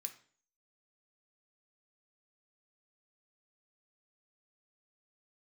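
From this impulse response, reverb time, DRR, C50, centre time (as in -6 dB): 0.45 s, 5.0 dB, 12.0 dB, 9 ms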